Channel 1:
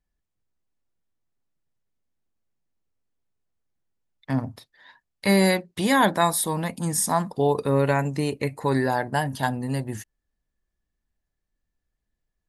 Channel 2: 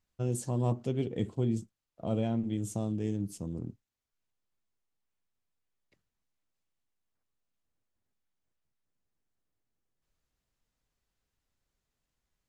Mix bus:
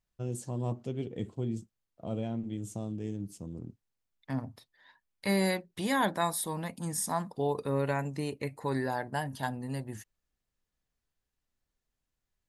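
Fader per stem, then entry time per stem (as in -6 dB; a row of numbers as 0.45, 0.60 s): -9.0, -4.0 dB; 0.00, 0.00 s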